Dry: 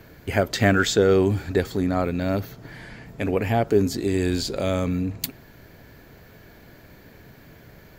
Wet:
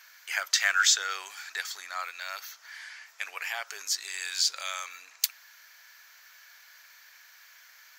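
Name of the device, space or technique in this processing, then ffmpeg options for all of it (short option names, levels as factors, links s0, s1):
headphones lying on a table: -af "highpass=f=1200:w=0.5412,highpass=f=1200:w=1.3066,equalizer=f=5900:t=o:w=0.55:g=10"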